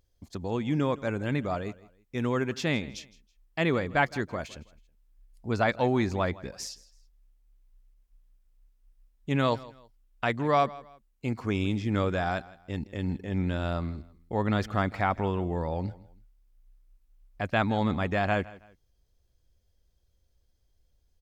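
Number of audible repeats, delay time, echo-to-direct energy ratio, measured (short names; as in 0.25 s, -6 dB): 2, 0.162 s, -19.5 dB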